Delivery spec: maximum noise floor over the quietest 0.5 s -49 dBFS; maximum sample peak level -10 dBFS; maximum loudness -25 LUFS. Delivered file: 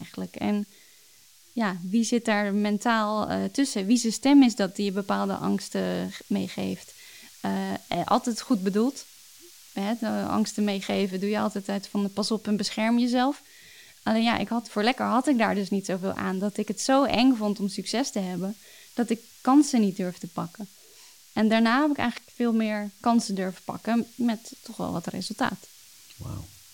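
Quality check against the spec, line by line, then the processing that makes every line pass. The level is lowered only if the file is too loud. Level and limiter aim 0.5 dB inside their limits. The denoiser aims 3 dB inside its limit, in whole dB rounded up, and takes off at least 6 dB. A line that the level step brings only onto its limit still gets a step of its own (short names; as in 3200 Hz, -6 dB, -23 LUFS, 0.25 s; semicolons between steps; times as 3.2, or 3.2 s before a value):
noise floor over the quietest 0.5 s -55 dBFS: OK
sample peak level -8.5 dBFS: fail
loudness -26.0 LUFS: OK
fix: limiter -10.5 dBFS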